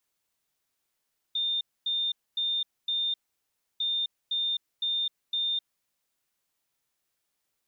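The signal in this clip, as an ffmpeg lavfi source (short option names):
-f lavfi -i "aevalsrc='0.0531*sin(2*PI*3620*t)*clip(min(mod(mod(t,2.45),0.51),0.26-mod(mod(t,2.45),0.51))/0.005,0,1)*lt(mod(t,2.45),2.04)':d=4.9:s=44100"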